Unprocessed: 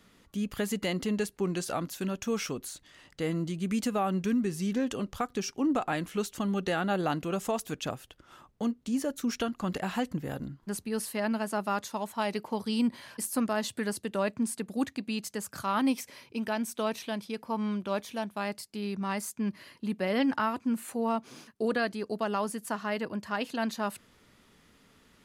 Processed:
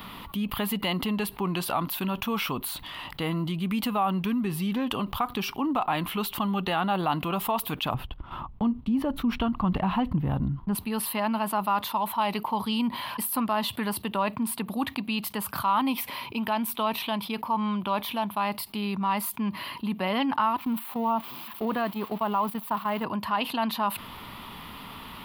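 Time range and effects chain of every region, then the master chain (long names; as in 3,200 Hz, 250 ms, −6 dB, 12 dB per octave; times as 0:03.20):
0:07.94–0:10.75: noise gate −56 dBFS, range −12 dB + RIAA equalisation playback
0:20.57–0:23.04: spike at every zero crossing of −27 dBFS + low-pass filter 1,300 Hz 6 dB per octave + noise gate −38 dBFS, range −12 dB
whole clip: drawn EQ curve 220 Hz 0 dB, 500 Hz −6 dB, 1,000 Hz +12 dB, 1,600 Hz −3 dB, 3,000 Hz +6 dB, 4,200 Hz 0 dB, 6,600 Hz −18 dB, 15,000 Hz +12 dB; envelope flattener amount 50%; level −2.5 dB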